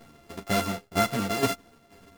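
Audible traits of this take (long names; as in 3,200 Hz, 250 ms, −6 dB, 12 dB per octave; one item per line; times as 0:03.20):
a buzz of ramps at a fixed pitch in blocks of 64 samples
tremolo saw down 2.1 Hz, depth 70%
a shimmering, thickened sound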